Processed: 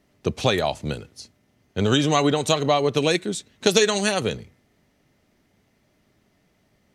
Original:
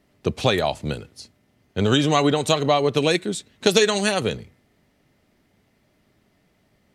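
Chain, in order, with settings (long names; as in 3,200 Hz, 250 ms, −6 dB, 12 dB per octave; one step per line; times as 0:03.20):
parametric band 6,100 Hz +4 dB 0.31 octaves
level −1 dB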